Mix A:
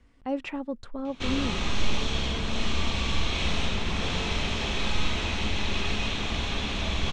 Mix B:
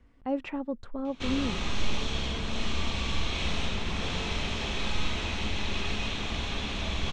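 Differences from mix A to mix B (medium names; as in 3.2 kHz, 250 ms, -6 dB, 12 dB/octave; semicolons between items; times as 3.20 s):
speech: add treble shelf 2.9 kHz -9 dB; background -3.0 dB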